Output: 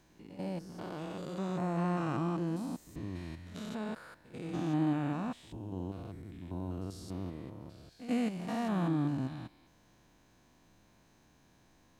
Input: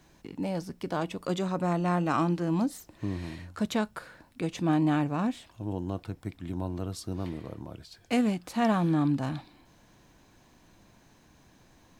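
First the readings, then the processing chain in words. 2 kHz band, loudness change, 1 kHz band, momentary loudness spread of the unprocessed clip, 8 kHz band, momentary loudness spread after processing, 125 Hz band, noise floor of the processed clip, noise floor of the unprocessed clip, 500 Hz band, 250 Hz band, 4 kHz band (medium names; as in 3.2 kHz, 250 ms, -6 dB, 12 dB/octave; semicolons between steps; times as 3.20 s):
-8.0 dB, -6.5 dB, -8.0 dB, 14 LU, -9.0 dB, 15 LU, -5.0 dB, -65 dBFS, -60 dBFS, -7.0 dB, -6.0 dB, -8.5 dB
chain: spectrogram pixelated in time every 200 ms; reverse echo 91 ms -14 dB; trim -4.5 dB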